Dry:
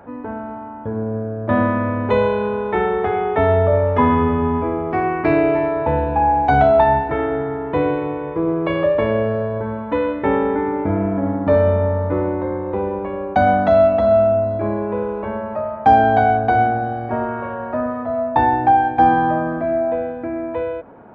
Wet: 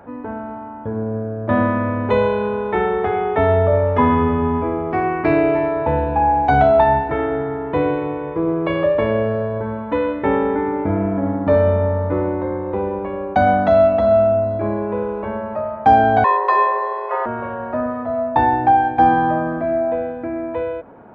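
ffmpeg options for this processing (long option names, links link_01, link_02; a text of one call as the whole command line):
ffmpeg -i in.wav -filter_complex "[0:a]asettb=1/sr,asplit=3[link_01][link_02][link_03];[link_01]atrim=end=16.244[link_04];[link_02]atrim=start=16.24:end=17.26,asetpts=PTS-STARTPTS,afade=type=in:duration=0.004:curve=qsin,afade=type=out:start_time=1.016:duration=0.004:curve=qsin,afreqshift=300[link_05];[link_03]atrim=start=17.256[link_06];[link_04][link_05]acrossfade=duration=0.004:curve1=hsin:curve2=qsin[link_07];[link_07][link_06]acrossfade=duration=0.004:curve1=qsin:curve2=hsin" out.wav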